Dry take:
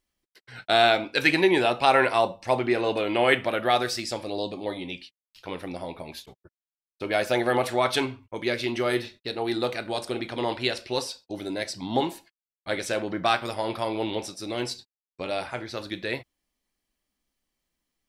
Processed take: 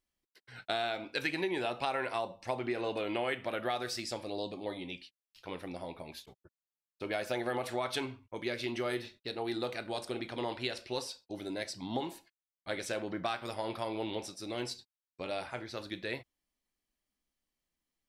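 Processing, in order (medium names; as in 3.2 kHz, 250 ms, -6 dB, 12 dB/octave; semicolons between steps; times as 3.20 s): compression 6:1, threshold -23 dBFS, peak gain reduction 9 dB; trim -7 dB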